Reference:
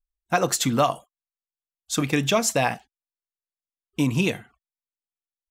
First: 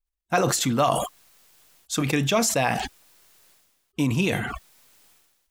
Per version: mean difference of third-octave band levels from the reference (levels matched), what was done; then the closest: 4.0 dB: sustainer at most 42 dB/s; gain -1.5 dB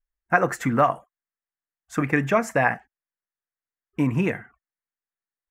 6.0 dB: resonant high shelf 2600 Hz -12.5 dB, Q 3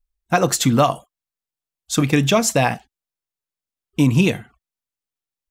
2.0 dB: low shelf 240 Hz +6.5 dB; gain +3.5 dB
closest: third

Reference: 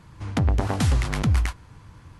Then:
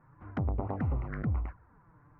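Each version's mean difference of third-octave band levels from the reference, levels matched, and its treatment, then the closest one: 7.0 dB: inverse Chebyshev low-pass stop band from 3200 Hz, stop band 40 dB; tilt +1.5 dB/oct; envelope flanger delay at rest 8.6 ms, full sweep at -23.5 dBFS; gain -5 dB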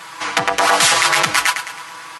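12.0 dB: HPF 990 Hz 12 dB/oct; comb 6.1 ms, depth 84%; feedback echo 0.107 s, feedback 47%, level -15.5 dB; maximiser +23.5 dB; gain -1 dB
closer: first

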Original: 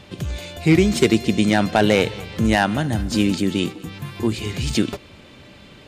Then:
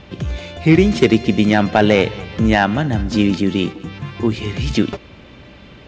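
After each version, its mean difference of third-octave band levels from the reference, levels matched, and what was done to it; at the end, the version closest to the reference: 3.0 dB: steep low-pass 6100 Hz 36 dB/oct; bell 4500 Hz -5.5 dB 0.8 oct; hum 60 Hz, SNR 33 dB; gain +3.5 dB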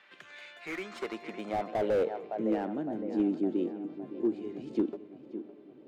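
10.5 dB: HPF 220 Hz 12 dB/oct; band-pass sweep 1700 Hz -> 340 Hz, 0.57–2.49; on a send: darkening echo 0.561 s, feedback 54%, low-pass 2600 Hz, level -12 dB; on the sum: slew limiter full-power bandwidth 51 Hz; gain -4 dB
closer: first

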